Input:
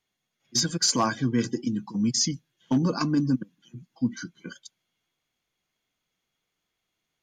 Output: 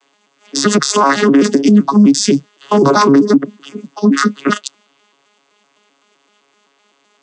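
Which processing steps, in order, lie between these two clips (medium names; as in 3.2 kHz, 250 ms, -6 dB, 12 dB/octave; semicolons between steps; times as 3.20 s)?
vocoder on a broken chord bare fifth, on C#3, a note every 128 ms; high-pass 280 Hz 24 dB/octave; treble shelf 3.7 kHz +7.5 dB; compression, threshold -31 dBFS, peak gain reduction 8.5 dB; peaking EQ 1.1 kHz +7.5 dB 0.62 oct; loudness maximiser +32.5 dB; trim -1 dB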